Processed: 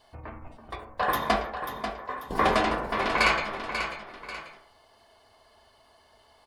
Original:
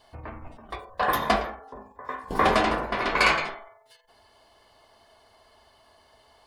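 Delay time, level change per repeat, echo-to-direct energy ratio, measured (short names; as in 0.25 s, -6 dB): 0.54 s, -8.0 dB, -8.0 dB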